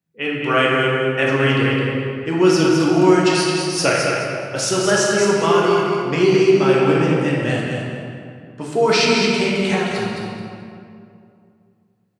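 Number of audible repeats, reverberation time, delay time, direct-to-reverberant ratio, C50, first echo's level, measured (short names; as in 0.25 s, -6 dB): 1, 2.4 s, 0.214 s, -5.0 dB, -2.0 dB, -5.5 dB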